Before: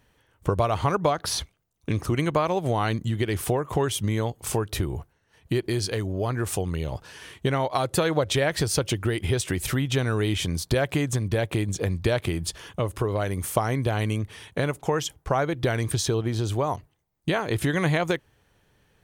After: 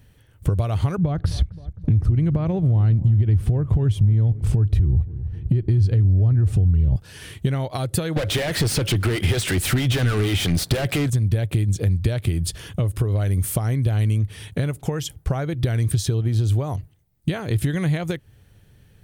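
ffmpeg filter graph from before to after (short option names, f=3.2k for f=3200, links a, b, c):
-filter_complex "[0:a]asettb=1/sr,asplit=3[a][b][c];[a]atrim=end=0.984[d];[b]atrim=start=0.98:end=6.96,asetpts=PTS-STARTPTS,afade=t=in:d=0.004:c=qsin,afade=t=out:st=5.976:d=0.004:c=qsin,aemphasis=mode=reproduction:type=riaa,acompressor=threshold=-17dB:ratio=6:attack=3.2:release=140:knee=1:detection=peak,asplit=2[e][f];[f]adelay=263,lowpass=f=1.2k:p=1,volume=-19dB,asplit=2[g][h];[h]adelay=263,lowpass=f=1.2k:p=1,volume=0.49,asplit=2[i][j];[j]adelay=263,lowpass=f=1.2k:p=1,volume=0.49,asplit=2[k][l];[l]adelay=263,lowpass=f=1.2k:p=1,volume=0.49[m];[e][g][i][k][m]amix=inputs=5:normalize=0,atrim=end_sample=263718[n];[c]atrim=start=6.956[o];[d][n]acrossfade=d=0.004:c1=hsin:c2=qsin[p];[p][o]acrossfade=d=0.004:c1=qsin:c2=hsin,asettb=1/sr,asplit=3[q][r][s];[q]atrim=end=8.164[t];[r]atrim=start=8.16:end=11.1,asetpts=PTS-STARTPTS,afade=t=in:d=0.004:c=qsin,afade=t=out:st=2.936:d=0.004:c=qsin,acrossover=split=440[u][v];[u]aeval=exprs='val(0)*(1-0.5/2+0.5/2*cos(2*PI*6.3*n/s))':c=same[w];[v]aeval=exprs='val(0)*(1-0.5/2-0.5/2*cos(2*PI*6.3*n/s))':c=same[x];[w][x]amix=inputs=2:normalize=0,asplit=2[y][z];[z]highpass=f=720:p=1,volume=32dB,asoftclip=type=tanh:threshold=-11dB[aa];[y][aa]amix=inputs=2:normalize=0,lowpass=f=3.6k:p=1,volume=-6dB[ab];[s]atrim=start=11.096[ac];[t][ab]acrossfade=d=0.004:c1=hsin:c2=qsin[ad];[ad][ac]acrossfade=d=0.004:c1=qsin:c2=hsin,equalizer=f=100:t=o:w=0.67:g=5,equalizer=f=1k:t=o:w=0.67:g=-6,equalizer=f=6.3k:t=o:w=0.67:g=-5,acompressor=threshold=-31dB:ratio=2.5,bass=f=250:g=9,treble=f=4k:g=6,volume=3dB"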